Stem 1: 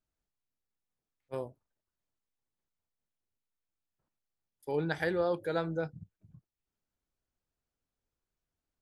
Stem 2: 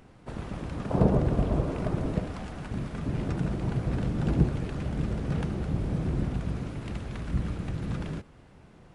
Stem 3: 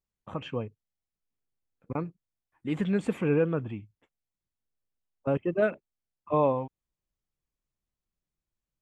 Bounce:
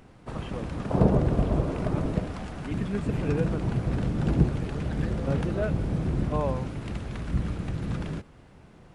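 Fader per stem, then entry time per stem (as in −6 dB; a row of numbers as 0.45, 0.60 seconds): −12.0, +1.5, −5.5 decibels; 0.00, 0.00, 0.00 seconds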